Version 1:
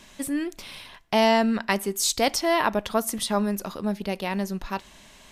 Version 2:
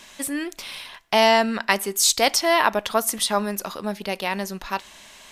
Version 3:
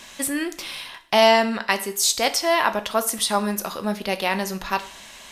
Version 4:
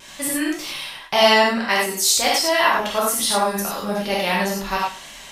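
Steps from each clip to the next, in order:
low shelf 380 Hz -12 dB; gain +6 dB
vocal rider within 4 dB 2 s; two-slope reverb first 0.47 s, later 2 s, from -26 dB, DRR 9 dB; gain -1 dB
wow and flutter 48 cents; non-linear reverb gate 0.13 s flat, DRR -5 dB; gain -3 dB

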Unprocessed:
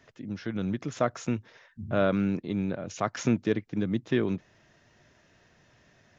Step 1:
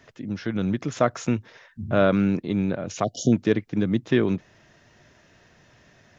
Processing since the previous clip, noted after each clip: spectral delete 3.04–3.33, 740–2900 Hz; gain +5.5 dB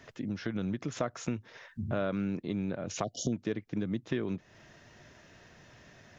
compressor 3:1, threshold -33 dBFS, peak gain reduction 14 dB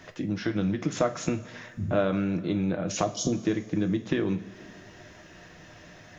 two-slope reverb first 0.27 s, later 2.5 s, from -19 dB, DRR 5 dB; gain +5.5 dB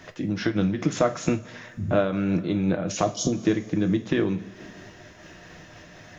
noise-modulated level, depth 55%; gain +6 dB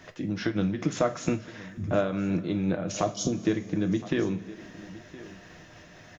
echo 1.016 s -18 dB; gain -3.5 dB

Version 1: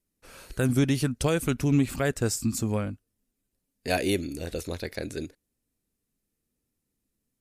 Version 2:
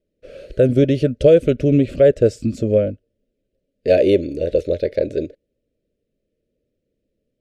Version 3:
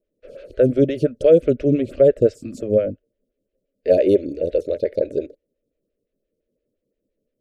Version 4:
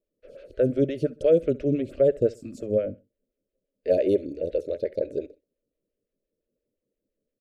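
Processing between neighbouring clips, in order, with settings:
EQ curve 260 Hz 0 dB, 600 Hz +15 dB, 850 Hz -26 dB, 1500 Hz -8 dB, 3100 Hz -3 dB, 14000 Hz -29 dB; gain +6 dB
photocell phaser 5.8 Hz
feedback echo 66 ms, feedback 32%, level -22 dB; gain -6.5 dB

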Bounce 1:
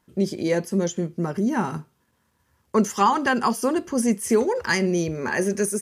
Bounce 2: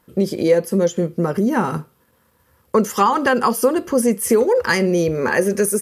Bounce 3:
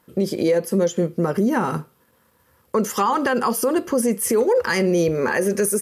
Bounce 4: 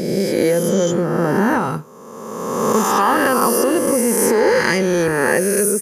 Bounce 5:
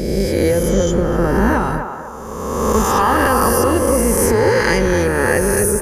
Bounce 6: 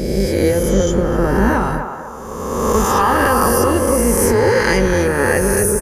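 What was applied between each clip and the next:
thirty-one-band EQ 500 Hz +9 dB, 1250 Hz +4 dB, 6300 Hz -4 dB, 12500 Hz +10 dB; compressor 2:1, threshold -22 dBFS, peak gain reduction 7.5 dB; gain +6.5 dB
low shelf 69 Hz -9.5 dB; limiter -11 dBFS, peak gain reduction 6.5 dB
spectral swells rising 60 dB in 1.77 s
octaver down 2 oct, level -1 dB; narrowing echo 0.251 s, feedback 47%, band-pass 870 Hz, level -5.5 dB
doubler 21 ms -12 dB

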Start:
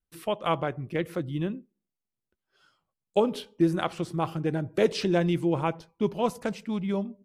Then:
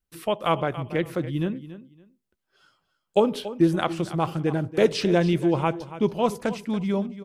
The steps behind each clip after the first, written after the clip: feedback echo 0.282 s, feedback 21%, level -14.5 dB; gain +3.5 dB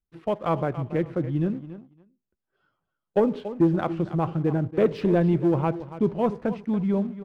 Bessel low-pass 1600 Hz, order 2; low shelf 460 Hz +5 dB; sample leveller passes 1; gain -6 dB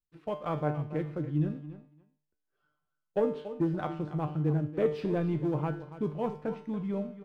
resonator 150 Hz, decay 0.5 s, harmonics all, mix 80%; gain +3 dB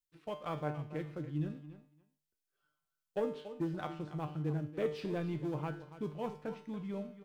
high shelf 2200 Hz +11 dB; gain -7.5 dB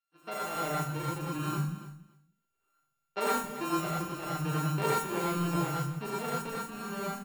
sample sorter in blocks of 32 samples; three bands offset in time mids, highs, lows 40/180 ms, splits 200/4800 Hz; non-linear reverb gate 0.14 s rising, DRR -5.5 dB

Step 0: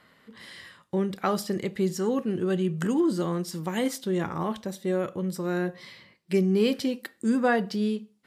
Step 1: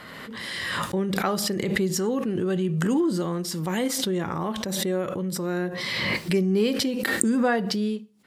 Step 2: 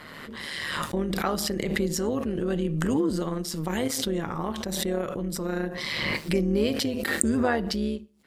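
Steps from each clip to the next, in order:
backwards sustainer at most 21 dB/s
AM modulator 150 Hz, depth 50%; gain +1 dB

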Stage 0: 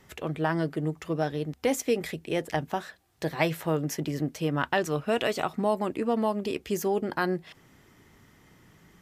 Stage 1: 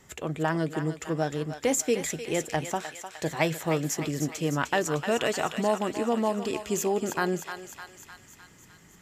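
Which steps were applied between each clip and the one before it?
bell 7200 Hz +12 dB 0.32 oct; on a send: thinning echo 0.304 s, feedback 67%, high-pass 900 Hz, level -7 dB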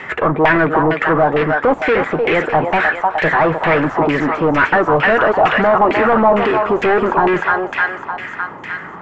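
overdrive pedal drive 32 dB, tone 2500 Hz, clips at -10.5 dBFS; LFO low-pass saw down 2.2 Hz 800–2400 Hz; gain +3.5 dB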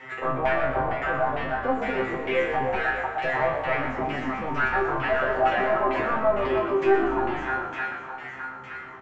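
resonator 130 Hz, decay 0.38 s, harmonics all, mix 100%; frequency-shifting echo 0.12 s, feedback 43%, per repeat -52 Hz, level -8.5 dB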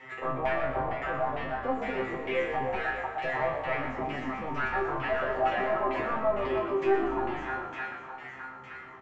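notch 1500 Hz, Q 11; gain -5 dB

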